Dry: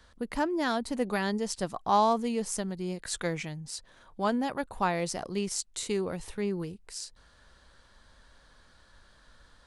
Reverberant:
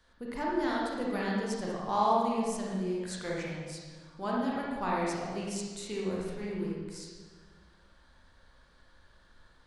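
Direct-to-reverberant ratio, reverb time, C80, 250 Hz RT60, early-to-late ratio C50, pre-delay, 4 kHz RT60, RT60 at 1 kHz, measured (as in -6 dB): -5.0 dB, 1.5 s, 1.5 dB, 1.9 s, -2.0 dB, 28 ms, 1.2 s, 1.4 s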